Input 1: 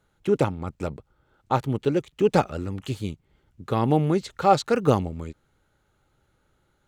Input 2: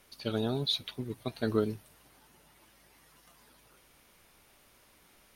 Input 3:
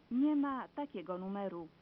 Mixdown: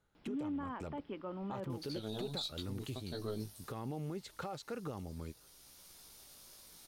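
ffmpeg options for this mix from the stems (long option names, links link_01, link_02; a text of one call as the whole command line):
ffmpeg -i stem1.wav -i stem2.wav -i stem3.wav -filter_complex "[0:a]acompressor=threshold=-25dB:ratio=6,volume=-9.5dB,asplit=2[link_01][link_02];[1:a]aeval=exprs='if(lt(val(0),0),0.708*val(0),val(0))':channel_layout=same,highshelf=frequency=3300:width_type=q:width=1.5:gain=9.5,flanger=delay=15.5:depth=4.7:speed=0.74,adelay=1700,volume=3dB[link_03];[2:a]adelay=150,volume=-0.5dB[link_04];[link_02]apad=whole_len=311133[link_05];[link_03][link_05]sidechaincompress=threshold=-43dB:ratio=4:attack=7.6:release=1020[link_06];[link_01][link_04]amix=inputs=2:normalize=0,alimiter=level_in=9dB:limit=-24dB:level=0:latency=1:release=16,volume=-9dB,volume=0dB[link_07];[link_06][link_07]amix=inputs=2:normalize=0,alimiter=level_in=5.5dB:limit=-24dB:level=0:latency=1:release=154,volume=-5.5dB" out.wav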